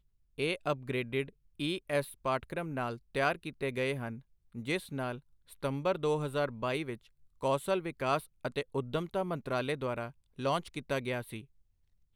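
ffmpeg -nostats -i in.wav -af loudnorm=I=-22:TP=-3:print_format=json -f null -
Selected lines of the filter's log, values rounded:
"input_i" : "-34.9",
"input_tp" : "-16.9",
"input_lra" : "2.3",
"input_thresh" : "-45.4",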